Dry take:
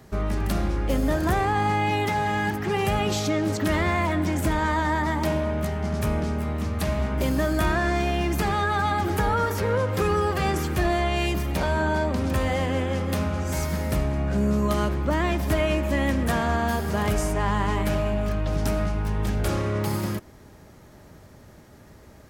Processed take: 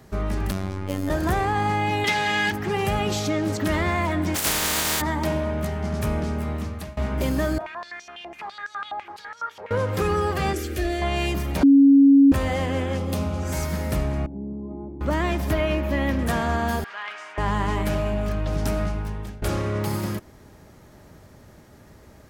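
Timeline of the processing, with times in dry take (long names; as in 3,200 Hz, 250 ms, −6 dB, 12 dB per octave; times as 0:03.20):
0:00.51–0:01.10: phases set to zero 95.2 Hz
0:02.04–0:02.52: meter weighting curve D
0:04.34–0:05.00: compressing power law on the bin magnitudes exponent 0.2
0:06.54–0:06.97: fade out, to −22 dB
0:07.58–0:09.71: band-pass on a step sequencer 12 Hz 730–5,800 Hz
0:10.53–0:11.02: phaser with its sweep stopped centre 390 Hz, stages 4
0:11.63–0:12.32: beep over 277 Hz −9.5 dBFS
0:12.97–0:13.43: parametric band 1,700 Hz −8.5 dB
0:14.26–0:15.01: formant resonators in series u
0:15.51–0:16.19: parametric band 8,200 Hz −12 dB 0.74 octaves
0:16.84–0:17.38: flat-topped band-pass 2,000 Hz, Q 0.9
0:18.87–0:19.42: fade out, to −19.5 dB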